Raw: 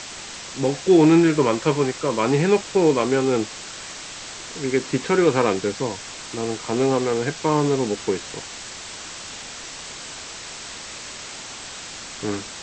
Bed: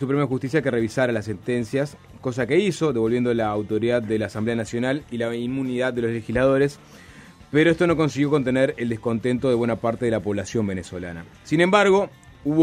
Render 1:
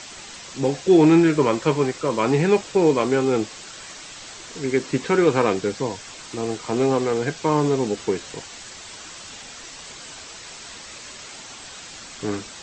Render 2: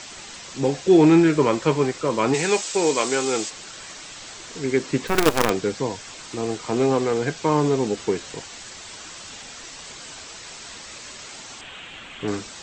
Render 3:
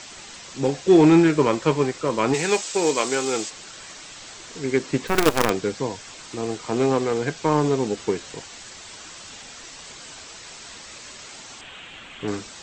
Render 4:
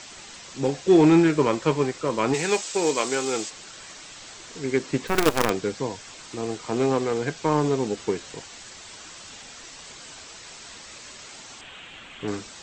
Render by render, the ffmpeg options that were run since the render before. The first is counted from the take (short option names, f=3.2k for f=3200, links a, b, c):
-af "afftdn=nr=6:nf=-37"
-filter_complex "[0:a]asplit=3[a][b][c];[a]afade=t=out:st=2.33:d=0.02[d];[b]aemphasis=mode=production:type=riaa,afade=t=in:st=2.33:d=0.02,afade=t=out:st=3.49:d=0.02[e];[c]afade=t=in:st=3.49:d=0.02[f];[d][e][f]amix=inputs=3:normalize=0,asettb=1/sr,asplit=3[g][h][i];[g]atrim=end=5.074[j];[h]atrim=start=5.07:end=5.5,asetpts=PTS-STARTPTS,afade=t=in:d=0.004:c=qsin,afade=t=out:st=0.426:d=0.004:c=qsin,acrusher=bits=3:dc=4:mix=0:aa=0.000001[k];[i]atrim=start=5.496[l];[j][k]acrossfade=d=0.004:c1=hsin:c2=qsin[m];[m][l]acrossfade=d=0.004:c1=qsin:c2=hsin,asettb=1/sr,asplit=3[n][o][p];[n]atrim=end=11.614[q];[o]atrim=start=11.61:end=12.28,asetpts=PTS-STARTPTS,afade=t=in:d=0.004:c=qsin,afade=t=out:st=0.666:d=0.004:c=qsin,highshelf=f=3.9k:t=q:w=3:g=-9[r];[p]atrim=start=12.276[s];[q][r]acrossfade=d=0.004:c1=hsin:c2=qsin[t];[t][s]acrossfade=d=0.004:c1=qsin:c2=hsin"
-af "aeval=exprs='0.668*(cos(1*acos(clip(val(0)/0.668,-1,1)))-cos(1*PI/2))+0.0133*(cos(5*acos(clip(val(0)/0.668,-1,1)))-cos(5*PI/2))+0.0266*(cos(7*acos(clip(val(0)/0.668,-1,1)))-cos(7*PI/2))':c=same"
-af "volume=-2dB"